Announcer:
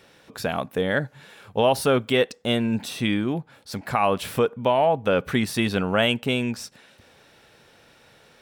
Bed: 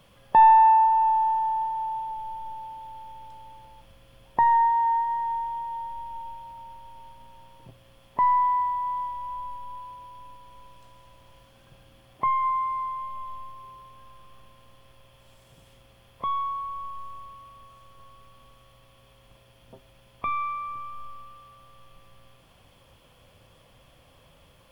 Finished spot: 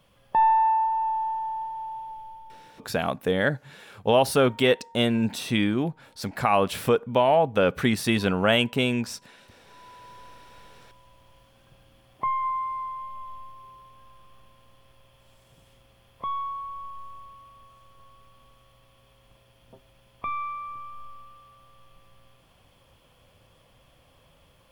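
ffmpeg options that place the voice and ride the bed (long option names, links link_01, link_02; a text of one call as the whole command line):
ffmpeg -i stem1.wav -i stem2.wav -filter_complex "[0:a]adelay=2500,volume=0dB[link_01];[1:a]volume=21.5dB,afade=type=out:start_time=2.12:duration=0.82:silence=0.0630957,afade=type=in:start_time=9.64:duration=0.47:silence=0.0473151[link_02];[link_01][link_02]amix=inputs=2:normalize=0" out.wav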